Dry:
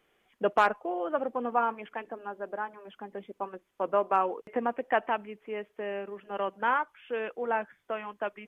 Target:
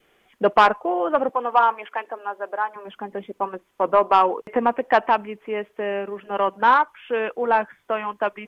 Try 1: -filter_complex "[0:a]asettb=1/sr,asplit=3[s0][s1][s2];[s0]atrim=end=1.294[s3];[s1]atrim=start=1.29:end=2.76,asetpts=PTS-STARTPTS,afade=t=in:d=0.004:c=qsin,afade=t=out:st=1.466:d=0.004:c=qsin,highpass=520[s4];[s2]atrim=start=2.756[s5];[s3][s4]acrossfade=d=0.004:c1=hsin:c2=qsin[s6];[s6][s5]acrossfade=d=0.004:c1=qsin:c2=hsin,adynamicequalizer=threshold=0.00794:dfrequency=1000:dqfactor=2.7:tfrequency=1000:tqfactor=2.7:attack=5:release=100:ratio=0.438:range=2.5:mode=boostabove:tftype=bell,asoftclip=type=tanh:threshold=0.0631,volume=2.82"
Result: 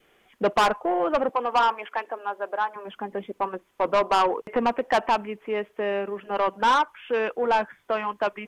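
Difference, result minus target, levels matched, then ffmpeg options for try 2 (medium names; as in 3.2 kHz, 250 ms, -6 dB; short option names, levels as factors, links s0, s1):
saturation: distortion +10 dB
-filter_complex "[0:a]asettb=1/sr,asplit=3[s0][s1][s2];[s0]atrim=end=1.294[s3];[s1]atrim=start=1.29:end=2.76,asetpts=PTS-STARTPTS,afade=t=in:d=0.004:c=qsin,afade=t=out:st=1.466:d=0.004:c=qsin,highpass=520[s4];[s2]atrim=start=2.756[s5];[s3][s4]acrossfade=d=0.004:c1=hsin:c2=qsin[s6];[s6][s5]acrossfade=d=0.004:c1=qsin:c2=hsin,adynamicequalizer=threshold=0.00794:dfrequency=1000:dqfactor=2.7:tfrequency=1000:tqfactor=2.7:attack=5:release=100:ratio=0.438:range=2.5:mode=boostabove:tftype=bell,asoftclip=type=tanh:threshold=0.2,volume=2.82"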